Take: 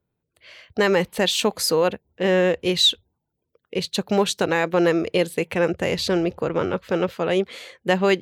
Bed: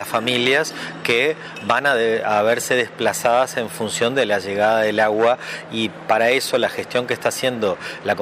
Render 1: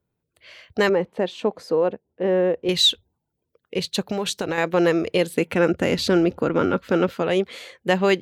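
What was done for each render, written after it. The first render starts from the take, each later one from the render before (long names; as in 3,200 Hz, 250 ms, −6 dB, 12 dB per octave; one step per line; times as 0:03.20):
0:00.89–0:02.69: resonant band-pass 410 Hz, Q 0.7
0:04.07–0:04.58: downward compressor 10 to 1, threshold −20 dBFS
0:05.33–0:07.22: hollow resonant body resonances 260/1,400 Hz, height 9 dB, ringing for 30 ms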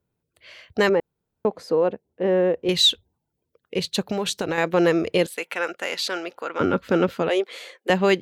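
0:01.00–0:01.45: fill with room tone
0:05.26–0:06.60: high-pass filter 830 Hz
0:07.29–0:07.90: inverse Chebyshev high-pass filter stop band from 160 Hz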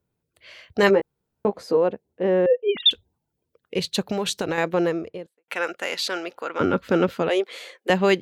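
0:00.81–0:01.77: double-tracking delay 15 ms −5.5 dB
0:02.46–0:02.91: three sine waves on the formant tracks
0:04.45–0:05.48: fade out and dull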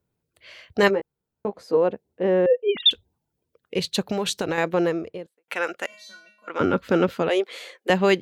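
0:00.88–0:01.73: clip gain −5.5 dB
0:05.86–0:06.48: tuned comb filter 210 Hz, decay 0.45 s, harmonics odd, mix 100%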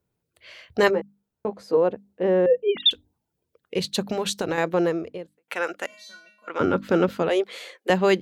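mains-hum notches 50/100/150/200/250/300 Hz
dynamic equaliser 2,500 Hz, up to −3 dB, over −37 dBFS, Q 1.3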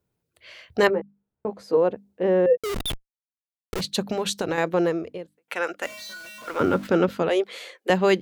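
0:00.87–0:01.50: high-frequency loss of the air 440 metres
0:02.57–0:03.81: comparator with hysteresis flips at −29 dBFS
0:05.82–0:06.87: converter with a step at zero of −37.5 dBFS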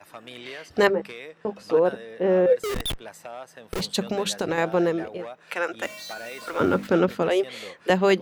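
mix in bed −22.5 dB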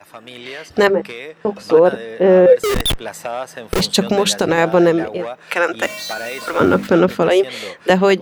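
in parallel at −2 dB: brickwall limiter −14.5 dBFS, peak gain reduction 8 dB
on the sum: automatic gain control gain up to 9 dB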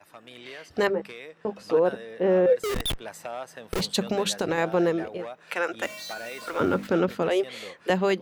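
level −10.5 dB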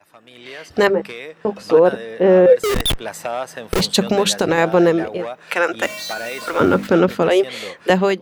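automatic gain control gain up to 11 dB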